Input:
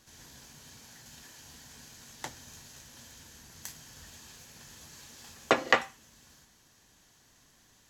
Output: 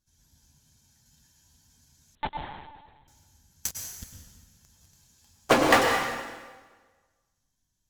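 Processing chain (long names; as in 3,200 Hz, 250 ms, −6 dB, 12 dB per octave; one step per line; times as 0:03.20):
spectral dynamics exaggerated over time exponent 1.5
high-shelf EQ 2,100 Hz −5.5 dB
in parallel at −7.5 dB: fuzz pedal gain 46 dB, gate −52 dBFS
on the sum: dense smooth reverb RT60 1.4 s, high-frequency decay 0.9×, pre-delay 90 ms, DRR 2 dB
0:02.15–0:03.08: linear-prediction vocoder at 8 kHz pitch kept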